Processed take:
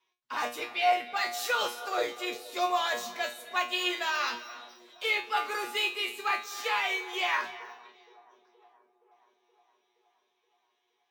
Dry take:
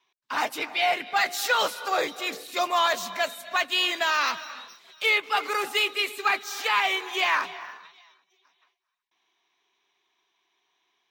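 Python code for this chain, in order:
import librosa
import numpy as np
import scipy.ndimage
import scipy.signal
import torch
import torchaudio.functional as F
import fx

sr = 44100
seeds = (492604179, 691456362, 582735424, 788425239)

p1 = fx.peak_eq(x, sr, hz=450.0, db=5.5, octaves=0.37)
p2 = fx.comb_fb(p1, sr, f0_hz=120.0, decay_s=0.31, harmonics='all', damping=0.0, mix_pct=90)
p3 = p2 + fx.echo_wet_bandpass(p2, sr, ms=472, feedback_pct=65, hz=400.0, wet_db=-19.5, dry=0)
y = p3 * 10.0 ** (4.0 / 20.0)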